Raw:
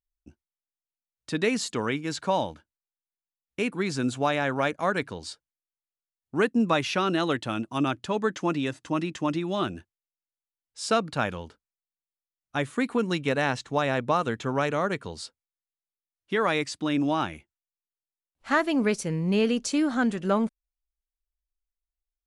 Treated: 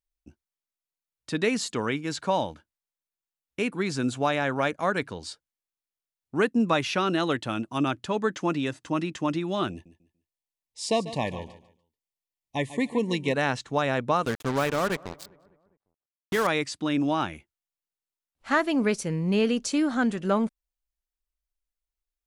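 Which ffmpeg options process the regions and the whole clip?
-filter_complex "[0:a]asettb=1/sr,asplit=3[a][b][c];[a]atrim=end=9.714[d];[b]atrim=start=9.71:end=13.34,asetpts=PTS-STARTPTS,afade=t=in:d=0.004:c=qsin,afade=t=out:st=3.626:d=0.004:c=qsin,asuperstop=centerf=1400:order=20:qfactor=2.3,aecho=1:1:145|290|435:0.188|0.0509|0.0137,atrim=end_sample=160083[e];[c]atrim=start=13.336[f];[d][e]acrossfade=d=0.004:c1=hsin:c2=qsin[g];[g][f]acrossfade=d=0.004:c1=qsin:c2=hsin,asettb=1/sr,asplit=3[h][i][j];[h]atrim=end=14.254[k];[i]atrim=start=14.25:end=16.47,asetpts=PTS-STARTPTS,afade=t=in:d=0.004:c=qsin,afade=t=out:st=2.216:d=0.004:c=qsin,acrusher=bits=4:mix=0:aa=0.5,asplit=2[l][m];[m]adelay=201,lowpass=f=1.7k:p=1,volume=-23dB,asplit=2[n][o];[o]adelay=201,lowpass=f=1.7k:p=1,volume=0.53,asplit=2[p][q];[q]adelay=201,lowpass=f=1.7k:p=1,volume=0.53,asplit=2[r][s];[s]adelay=201,lowpass=f=1.7k:p=1,volume=0.53[t];[l][n][p][r][t]amix=inputs=5:normalize=0,atrim=end_sample=97902[u];[j]atrim=start=16.466[v];[k][u]acrossfade=d=0.004:c1=hsin:c2=qsin[w];[w][v]acrossfade=d=0.004:c1=qsin:c2=hsin"

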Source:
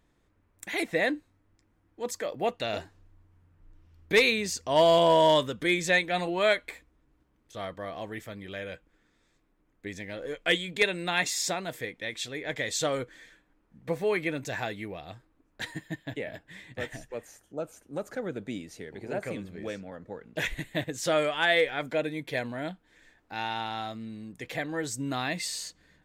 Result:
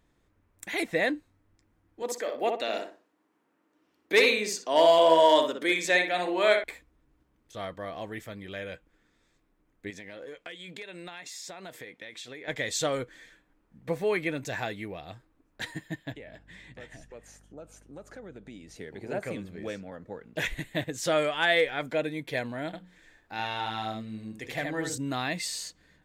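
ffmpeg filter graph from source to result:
-filter_complex "[0:a]asettb=1/sr,asplit=3[a][b][c];[a]atrim=end=2.024[d];[b]atrim=start=2.02:end=6.64,asetpts=PTS-STARTPTS,afade=t=in:d=0.004:c=qsin,afade=t=out:st=4.616:d=0.004:c=qsin,highpass=f=250:w=0.5412,highpass=f=250:w=1.3066,asplit=2[e][f];[f]adelay=61,lowpass=f=2k:p=1,volume=-4dB,asplit=2[g][h];[h]adelay=61,lowpass=f=2k:p=1,volume=0.3,asplit=2[i][j];[j]adelay=61,lowpass=f=2k:p=1,volume=0.3,asplit=2[k][l];[l]adelay=61,lowpass=f=2k:p=1,volume=0.3[m];[e][g][i][k][m]amix=inputs=5:normalize=0,atrim=end_sample=203742[n];[c]atrim=start=6.636[o];[d][n]acrossfade=d=0.004:c1=hsin:c2=qsin[p];[p][o]acrossfade=d=0.004:c1=qsin:c2=hsin,asettb=1/sr,asplit=3[q][r][s];[q]atrim=end=9.904[t];[r]atrim=start=9.9:end=12.48,asetpts=PTS-STARTPTS,afade=t=in:d=0.004:c=qsin,afade=t=out:st=2.576:d=0.004:c=qsin,highpass=f=240:p=1,highshelf=f=7.7k:g=-5,acompressor=threshold=-38dB:ratio=12:attack=3.2:release=140:knee=1:detection=peak[u];[s]atrim=start=12.476[v];[t][u]acrossfade=d=0.004:c1=hsin:c2=qsin[w];[w][v]acrossfade=d=0.004:c1=qsin:c2=hsin,asettb=1/sr,asplit=3[x][y][z];[x]atrim=end=16.124[aa];[y]atrim=start=16.12:end=18.76,asetpts=PTS-STARTPTS,afade=t=in:d=0.004:c=qsin,afade=t=out:st=2.636:d=0.004:c=qsin,lowpass=9.3k,acompressor=threshold=-46dB:ratio=2.5:attack=3.2:release=140:knee=1:detection=peak,aeval=exprs='val(0)+0.00126*(sin(2*PI*50*n/s)+sin(2*PI*2*50*n/s)/2+sin(2*PI*3*50*n/s)/3+sin(2*PI*4*50*n/s)/4+sin(2*PI*5*50*n/s)/5)':c=same[ab];[z]atrim=start=18.756[ac];[aa][ab]acrossfade=d=0.004:c1=hsin:c2=qsin[ad];[ad][ac]acrossfade=d=0.004:c1=qsin:c2=hsin,asettb=1/sr,asplit=3[ae][af][ag];[ae]atrim=end=22.664[ah];[af]atrim=start=22.66:end=24.98,asetpts=PTS-STARTPTS,afade=t=in:d=0.004:c=qsin,afade=t=out:st=2.316:d=0.004:c=qsin,bandreject=f=60:t=h:w=6,bandreject=f=120:t=h:w=6,bandreject=f=180:t=h:w=6,bandreject=f=240:t=h:w=6,bandreject=f=300:t=h:w=6,bandreject=f=360:t=h:w=6,bandreject=f=420:t=h:w=6,bandreject=f=480:t=h:w=6,bandreject=f=540:t=h:w=6,aecho=1:1:73:0.596,atrim=end_sample=102312[ai];[ag]atrim=start=24.976[aj];[ah][ai]acrossfade=d=0.004:c1=hsin:c2=qsin[ak];[ak][aj]acrossfade=d=0.004:c1=qsin:c2=hsin"

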